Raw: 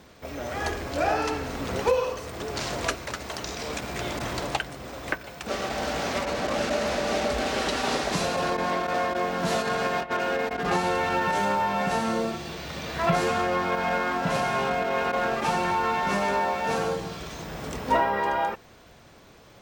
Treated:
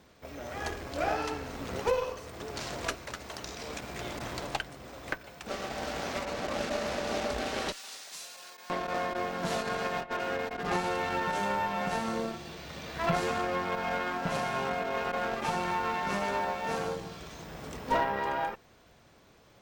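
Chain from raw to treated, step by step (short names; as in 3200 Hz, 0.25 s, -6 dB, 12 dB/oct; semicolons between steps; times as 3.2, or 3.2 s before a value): 7.72–8.7 differentiator; added harmonics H 4 -19 dB, 7 -30 dB, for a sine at -11.5 dBFS; gain -5.5 dB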